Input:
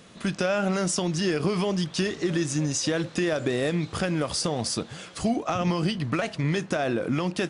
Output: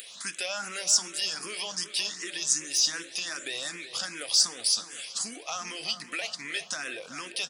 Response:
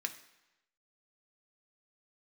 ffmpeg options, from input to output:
-filter_complex "[0:a]asplit=2[s0][s1];[1:a]atrim=start_sample=2205[s2];[s1][s2]afir=irnorm=-1:irlink=0,volume=0.596[s3];[s0][s3]amix=inputs=2:normalize=0,acompressor=mode=upward:threshold=0.02:ratio=2.5,asplit=2[s4][s5];[s5]adelay=376,lowpass=f=1900:p=1,volume=0.299,asplit=2[s6][s7];[s7]adelay=376,lowpass=f=1900:p=1,volume=0.54,asplit=2[s8][s9];[s9]adelay=376,lowpass=f=1900:p=1,volume=0.54,asplit=2[s10][s11];[s11]adelay=376,lowpass=f=1900:p=1,volume=0.54,asplit=2[s12][s13];[s13]adelay=376,lowpass=f=1900:p=1,volume=0.54,asplit=2[s14][s15];[s15]adelay=376,lowpass=f=1900:p=1,volume=0.54[s16];[s4][s6][s8][s10][s12][s14][s16]amix=inputs=7:normalize=0,acontrast=55,aderivative,asplit=2[s17][s18];[s18]afreqshift=2.6[s19];[s17][s19]amix=inputs=2:normalize=1,volume=1.19"

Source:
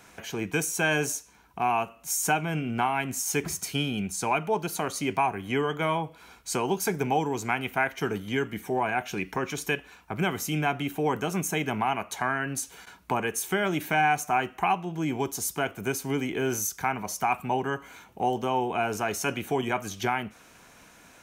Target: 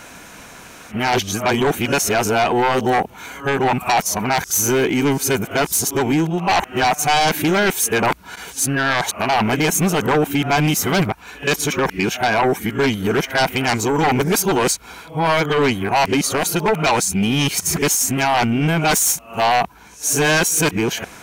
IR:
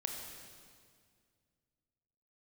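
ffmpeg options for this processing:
-af "areverse,aeval=exprs='0.251*sin(PI/2*3.16*val(0)/0.251)':c=same"

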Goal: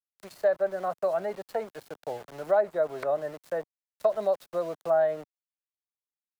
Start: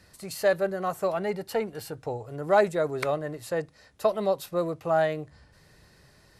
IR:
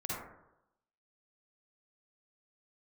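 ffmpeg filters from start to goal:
-filter_complex "[0:a]equalizer=f=630:t=o:w=0.67:g=11,equalizer=f=1600:t=o:w=0.67:g=8,equalizer=f=4000:t=o:w=0.67:g=5,aeval=exprs='val(0)*gte(abs(val(0)),0.0224)':c=same,acrossover=split=140|450|1400[s0][s1][s2][s3];[s0]acompressor=threshold=0.00126:ratio=4[s4];[s1]acompressor=threshold=0.0355:ratio=4[s5];[s2]acompressor=threshold=0.224:ratio=4[s6];[s3]acompressor=threshold=0.00708:ratio=4[s7];[s4][s5][s6][s7]amix=inputs=4:normalize=0,volume=0.422"

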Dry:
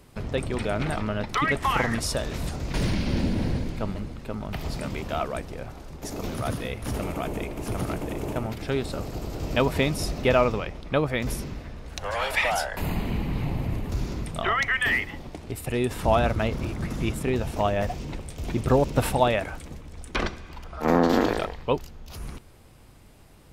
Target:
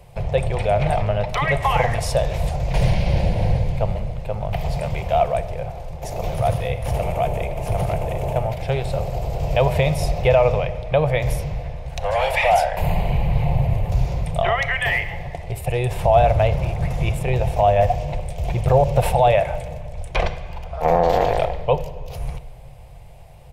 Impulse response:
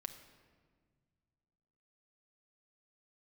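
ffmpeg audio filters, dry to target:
-filter_complex "[0:a]firequalizer=gain_entry='entry(140,0);entry(250,-24);entry(490,-1);entry(710,4);entry(1300,-13);entry(2300,-1)':delay=0.05:min_phase=1,alimiter=limit=0.168:level=0:latency=1:release=36,asplit=2[s0][s1];[1:a]atrim=start_sample=2205,lowpass=2800[s2];[s1][s2]afir=irnorm=-1:irlink=0,volume=2[s3];[s0][s3]amix=inputs=2:normalize=0,volume=1.26"

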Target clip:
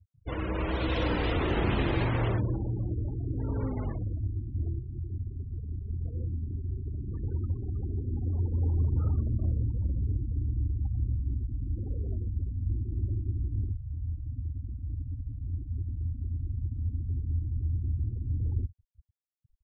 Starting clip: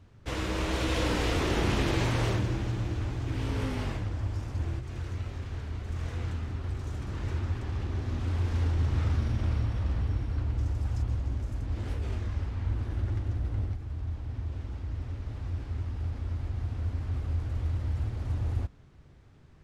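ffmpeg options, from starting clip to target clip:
-af "aecho=1:1:61|122:0.0841|0.021,afftfilt=real='re*gte(hypot(re,im),0.0251)':imag='im*gte(hypot(re,im),0.0251)':win_size=1024:overlap=0.75"

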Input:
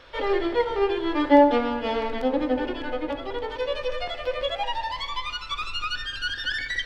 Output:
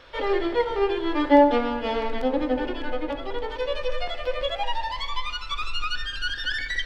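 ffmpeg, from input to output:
-af "asubboost=boost=2:cutoff=62"

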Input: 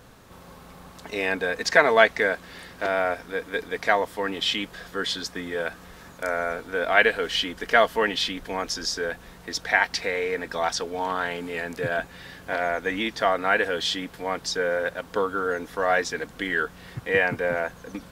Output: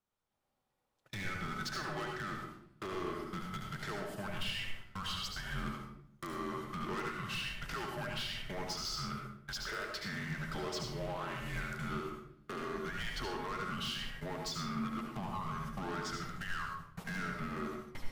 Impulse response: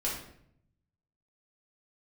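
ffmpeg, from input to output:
-filter_complex "[0:a]agate=range=0.01:threshold=0.0178:ratio=16:detection=peak,highpass=f=500:p=1,acrossover=split=800[s0][s1];[s0]alimiter=limit=0.0631:level=0:latency=1[s2];[s2][s1]amix=inputs=2:normalize=0,acompressor=threshold=0.01:ratio=5,asoftclip=type=tanh:threshold=0.0133,afreqshift=-300,aeval=exprs='0.0141*(abs(mod(val(0)/0.0141+3,4)-2)-1)':c=same,asplit=2[s3][s4];[1:a]atrim=start_sample=2205,adelay=71[s5];[s4][s5]afir=irnorm=-1:irlink=0,volume=0.473[s6];[s3][s6]amix=inputs=2:normalize=0,volume=1.41"

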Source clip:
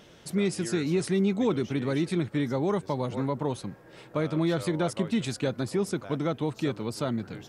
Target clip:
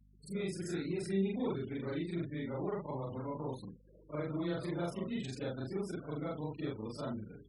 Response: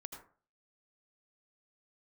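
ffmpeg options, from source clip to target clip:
-af "afftfilt=real='re':imag='-im':win_size=4096:overlap=0.75,afftfilt=real='re*gte(hypot(re,im),0.00794)':imag='im*gte(hypot(re,im),0.00794)':win_size=1024:overlap=0.75,aeval=exprs='val(0)+0.00141*(sin(2*PI*50*n/s)+sin(2*PI*2*50*n/s)/2+sin(2*PI*3*50*n/s)/3+sin(2*PI*4*50*n/s)/4+sin(2*PI*5*50*n/s)/5)':c=same,volume=0.531"

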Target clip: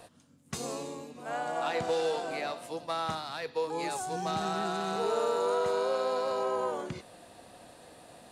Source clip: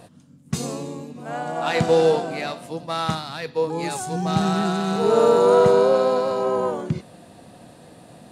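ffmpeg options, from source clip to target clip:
-filter_complex "[0:a]equalizer=f=160:t=o:w=1.9:g=-12.5,acrossover=split=490|1200[s0][s1][s2];[s0]acompressor=threshold=0.0251:ratio=4[s3];[s1]acompressor=threshold=0.0282:ratio=4[s4];[s2]acompressor=threshold=0.0158:ratio=4[s5];[s3][s4][s5]amix=inputs=3:normalize=0,volume=0.75"

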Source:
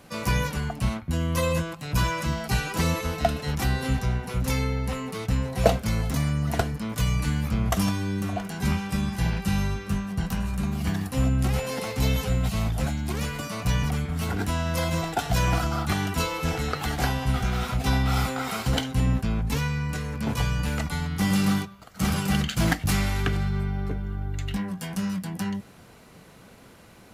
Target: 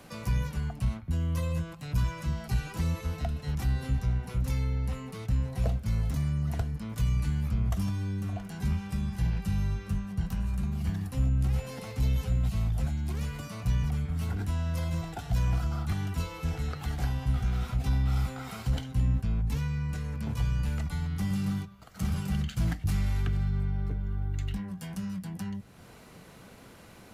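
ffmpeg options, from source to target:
-filter_complex "[0:a]acrossover=split=150[s0][s1];[s1]acompressor=threshold=0.00355:ratio=2[s2];[s0][s2]amix=inputs=2:normalize=0,asoftclip=type=tanh:threshold=0.158"

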